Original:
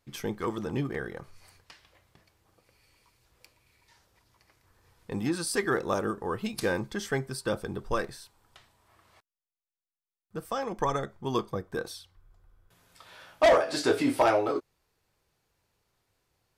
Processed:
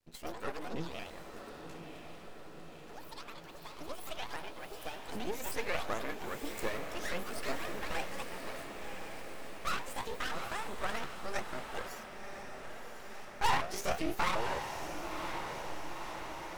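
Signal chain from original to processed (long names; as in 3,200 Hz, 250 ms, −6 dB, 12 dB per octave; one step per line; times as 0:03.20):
pitch shifter swept by a sawtooth +10 semitones, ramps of 368 ms
half-wave rectification
on a send: feedback delay with all-pass diffusion 1,041 ms, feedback 69%, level −6.5 dB
on the sum: delay with pitch and tempo change per echo 166 ms, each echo +6 semitones, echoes 2, each echo −6 dB
level −3.5 dB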